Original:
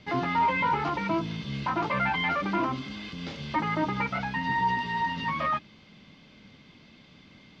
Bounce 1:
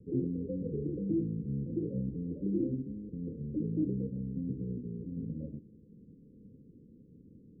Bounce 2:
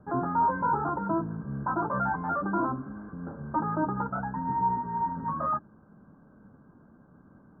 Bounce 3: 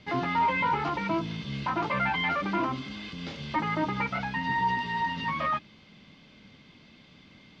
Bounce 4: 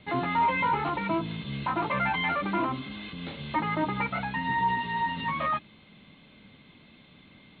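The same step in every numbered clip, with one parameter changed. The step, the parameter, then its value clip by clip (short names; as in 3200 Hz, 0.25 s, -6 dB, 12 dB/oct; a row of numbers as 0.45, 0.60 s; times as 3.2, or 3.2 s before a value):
Chebyshev low-pass, frequency: 510, 1600, 12000, 4200 Hz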